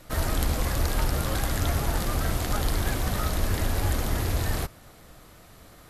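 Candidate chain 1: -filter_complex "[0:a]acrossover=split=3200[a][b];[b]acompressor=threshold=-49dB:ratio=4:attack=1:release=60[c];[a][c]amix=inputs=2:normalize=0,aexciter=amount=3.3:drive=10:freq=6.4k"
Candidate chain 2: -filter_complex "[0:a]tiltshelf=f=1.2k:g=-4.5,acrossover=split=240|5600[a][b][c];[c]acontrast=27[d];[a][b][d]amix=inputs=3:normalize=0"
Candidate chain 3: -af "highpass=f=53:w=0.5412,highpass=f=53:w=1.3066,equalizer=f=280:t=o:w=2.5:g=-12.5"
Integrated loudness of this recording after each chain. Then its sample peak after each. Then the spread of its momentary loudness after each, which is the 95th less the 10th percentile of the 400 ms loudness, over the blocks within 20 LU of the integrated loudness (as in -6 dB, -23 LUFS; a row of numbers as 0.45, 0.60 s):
-27.0, -26.0, -31.5 LUFS; -11.5, -2.5, -10.5 dBFS; 12, 2, 1 LU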